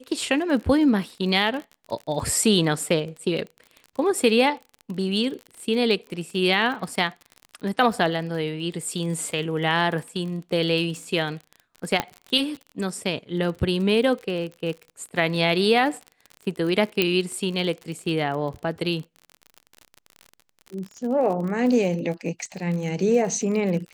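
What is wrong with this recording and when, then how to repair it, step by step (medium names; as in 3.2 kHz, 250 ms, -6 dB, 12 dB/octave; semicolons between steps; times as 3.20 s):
crackle 36 per s -31 dBFS
12.00 s: pop -7 dBFS
17.02 s: pop -6 dBFS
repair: de-click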